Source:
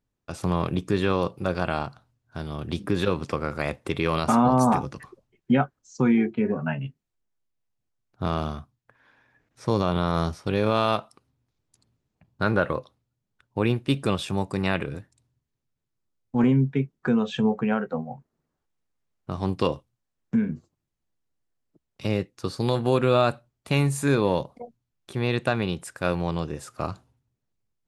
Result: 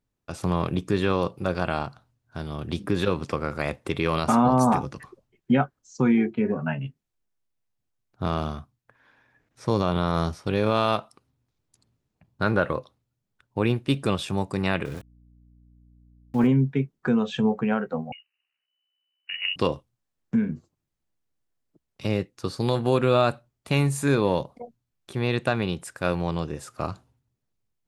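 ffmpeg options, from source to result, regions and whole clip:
-filter_complex "[0:a]asettb=1/sr,asplit=3[a][b][c];[a]atrim=end=14.854[d];[b]atrim=start=14.85:end=16.47,asetpts=PTS-STARTPTS,afade=t=in:d=0.004:c=qsin,afade=t=out:st=1.616:d=0.004:c=qsin,aeval=exprs='val(0)*gte(abs(val(0)),0.01)':c=same,aeval=exprs='val(0)+0.002*(sin(2*PI*60*n/s)+sin(2*PI*2*60*n/s)/2+sin(2*PI*3*60*n/s)/3+sin(2*PI*4*60*n/s)/4+sin(2*PI*5*60*n/s)/5)':c=same[e];[c]atrim=start=16.466[f];[d][e]acrossfade=d=0.004:c1=hsin:c2=qsin[g];[g][f]acrossfade=d=0.004:c1=qsin:c2=hsin,asettb=1/sr,asplit=3[h][i][j];[h]atrim=end=18.124[k];[i]atrim=start=18.12:end=19.56,asetpts=PTS-STARTPTS,afade=t=in:d=0.004:c=qsin,afade=t=out:st=1.436:d=0.004:c=qsin,tremolo=f=64:d=0.571,lowpass=f=2.6k:t=q:w=0.5098,lowpass=f=2.6k:t=q:w=0.6013,lowpass=f=2.6k:t=q:w=0.9,lowpass=f=2.6k:t=q:w=2.563,afreqshift=-3000[l];[j]atrim=start=19.556[m];[k][l]acrossfade=d=0.004:c1=hsin:c2=qsin[n];[n][m]acrossfade=d=0.004:c1=qsin:c2=hsin"

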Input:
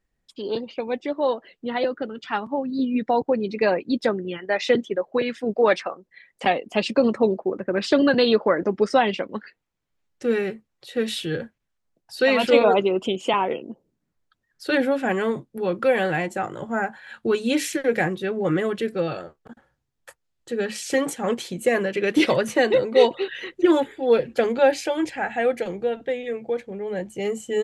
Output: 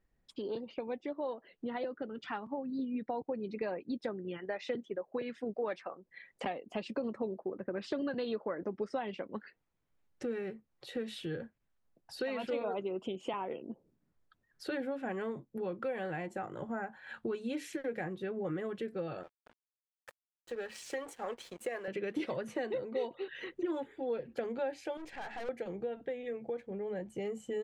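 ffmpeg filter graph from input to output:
-filter_complex "[0:a]asettb=1/sr,asplit=3[a][b][c];[a]atrim=end=19.234[d];[b]atrim=start=19.23:end=21.88,asetpts=PTS-STARTPTS,afade=t=in:d=0.004:c=qsin,afade=t=out:st=2.646:d=0.004:c=qsin,highpass=480,aeval=exprs='sgn(val(0))*max(abs(val(0))-0.00596,0)':c=same[e];[c]atrim=start=21.876[f];[d][e]acrossfade=d=0.004:c1=hsin:c2=qsin[g];[g][f]acrossfade=d=0.004:c1=qsin:c2=hsin,asettb=1/sr,asplit=3[h][i][j];[h]atrim=end=24.974[k];[i]atrim=start=24.97:end=25.49,asetpts=PTS-STARTPTS,afade=t=in:d=0.004:c=qsin,afade=t=out:st=0.516:d=0.004:c=qsin,highpass=f=490:p=1,aeval=exprs='(tanh(44.7*val(0)+0.6)-tanh(0.6))/44.7':c=same[l];[j]atrim=start=25.486[m];[k][l]acrossfade=d=0.004:c1=hsin:c2=qsin[n];[n][m]acrossfade=d=0.004:c1=qsin:c2=hsin,acompressor=threshold=-39dB:ratio=3,highshelf=f=2.7k:g=-9.5"

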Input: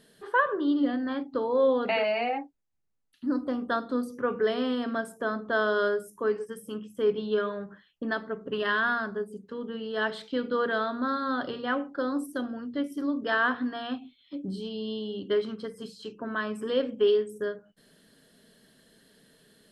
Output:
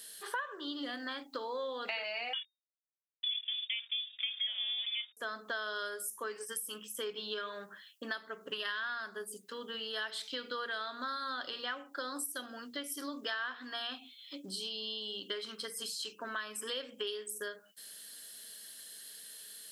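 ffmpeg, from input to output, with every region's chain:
-filter_complex "[0:a]asettb=1/sr,asplit=3[a][b][c];[a]atrim=end=2.334[d];[b]atrim=start=2.33:end=5.17,asetpts=PTS-STARTPTS,afade=t=in:d=0.004:c=qsin,afade=t=out:st=2.836:d=0.004:c=qsin,aeval=exprs='sgn(val(0))*max(abs(val(0))-0.0075,0)':c=same,lowpass=f=3.1k:t=q:w=0.5098,lowpass=f=3.1k:t=q:w=0.6013,lowpass=f=3.1k:t=q:w=0.9,lowpass=f=3.1k:t=q:w=2.563,afreqshift=-3700[e];[c]atrim=start=5.166[f];[d][e]acrossfade=d=0.004:c1=hsin:c2=qsin[g];[g][f]acrossfade=d=0.004:c1=qsin:c2=hsin,aderivative,acompressor=threshold=-53dB:ratio=5,volume=16.5dB"

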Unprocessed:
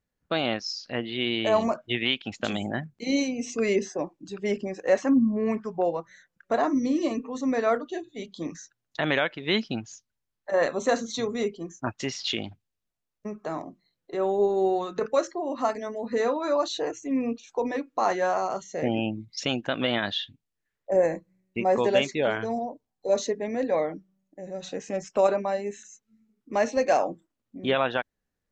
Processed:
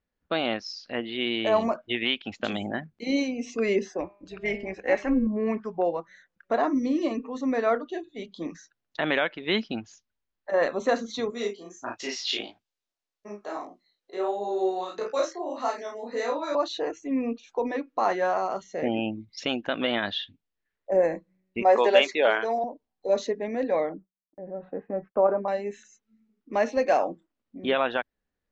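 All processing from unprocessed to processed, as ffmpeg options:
-filter_complex "[0:a]asettb=1/sr,asplit=3[a][b][c];[a]atrim=end=4.004[d];[b]atrim=start=4:end=5.27,asetpts=PTS-STARTPTS,afade=t=in:d=0.004:c=qsin,afade=t=out:st=1.266:d=0.004:c=qsin,equalizer=f=2.2k:w=2.8:g=11,bandreject=f=201.4:t=h:w=4,bandreject=f=402.8:t=h:w=4,bandreject=f=604.2:t=h:w=4,bandreject=f=805.6:t=h:w=4,bandreject=f=1.007k:t=h:w=4,bandreject=f=1.2084k:t=h:w=4,bandreject=f=1.4098k:t=h:w=4,bandreject=f=1.6112k:t=h:w=4,bandreject=f=1.8126k:t=h:w=4,bandreject=f=2.014k:t=h:w=4,bandreject=f=2.2154k:t=h:w=4,bandreject=f=2.4168k:t=h:w=4,bandreject=f=2.6182k:t=h:w=4,bandreject=f=2.8196k:t=h:w=4,bandreject=f=3.021k:t=h:w=4,bandreject=f=3.2224k:t=h:w=4,bandreject=f=3.4238k:t=h:w=4,bandreject=f=3.6252k:t=h:w=4,bandreject=f=3.8266k:t=h:w=4,bandreject=f=4.028k:t=h:w=4,bandreject=f=4.2294k:t=h:w=4,bandreject=f=4.4308k:t=h:w=4,bandreject=f=4.6322k:t=h:w=4,bandreject=f=4.8336k:t=h:w=4,tremolo=f=250:d=0.519[e];[c]atrim=start=5.266[f];[d][e]acrossfade=d=0.004:c1=hsin:c2=qsin[g];[g][f]acrossfade=d=0.004:c1=qsin:c2=hsin,asettb=1/sr,asplit=3[h][i][j];[h]atrim=end=11.304[k];[i]atrim=start=11.3:end=16.55,asetpts=PTS-STARTPTS,afade=t=in:d=0.004:c=qsin,afade=t=out:st=5.246:d=0.004:c=qsin,bass=f=250:g=-13,treble=f=4k:g=10,flanger=delay=16:depth=6.4:speed=1.6,asplit=2[l][m];[m]adelay=34,volume=-2dB[n];[l][n]amix=inputs=2:normalize=0,atrim=end_sample=231525[o];[j]atrim=start=16.546[p];[k][o]acrossfade=d=0.004:c1=hsin:c2=qsin[q];[q][p]acrossfade=d=0.004:c1=qsin:c2=hsin,asettb=1/sr,asplit=3[r][s][t];[r]atrim=end=21.624[u];[s]atrim=start=21.62:end=22.64,asetpts=PTS-STARTPTS,afade=t=in:d=0.004:c=qsin,afade=t=out:st=1.016:d=0.004:c=qsin,highpass=470,acontrast=42[v];[t]atrim=start=22.636[w];[u][v]acrossfade=d=0.004:c1=hsin:c2=qsin[x];[x][w]acrossfade=d=0.004:c1=qsin:c2=hsin,asettb=1/sr,asplit=3[y][z][aa];[y]atrim=end=23.894[ab];[z]atrim=start=23.89:end=25.48,asetpts=PTS-STARTPTS,afade=t=in:d=0.004:c=qsin,afade=t=out:st=1.586:d=0.004:c=qsin,lowpass=f=1.4k:w=0.5412,lowpass=f=1.4k:w=1.3066,agate=range=-33dB:threshold=-51dB:ratio=3:release=100:detection=peak[ac];[aa]atrim=start=25.476[ad];[ab][ac]acrossfade=d=0.004:c1=hsin:c2=qsin[ae];[ae][ad]acrossfade=d=0.004:c1=qsin:c2=hsin,lowpass=4.4k,equalizer=f=130:w=3.3:g=-12.5"

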